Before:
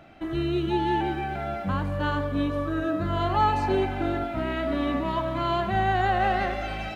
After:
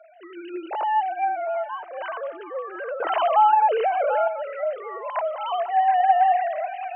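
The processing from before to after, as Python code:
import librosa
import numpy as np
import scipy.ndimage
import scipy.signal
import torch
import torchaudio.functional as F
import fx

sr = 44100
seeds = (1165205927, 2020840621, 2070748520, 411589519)

p1 = fx.sine_speech(x, sr)
p2 = fx.ladder_highpass(p1, sr, hz=530.0, resonance_pct=45)
p3 = p2 + fx.echo_feedback(p2, sr, ms=739, feedback_pct=29, wet_db=-17.0, dry=0)
p4 = fx.env_flatten(p3, sr, amount_pct=50, at=(3.0, 4.28))
y = p4 * librosa.db_to_amplitude(6.5)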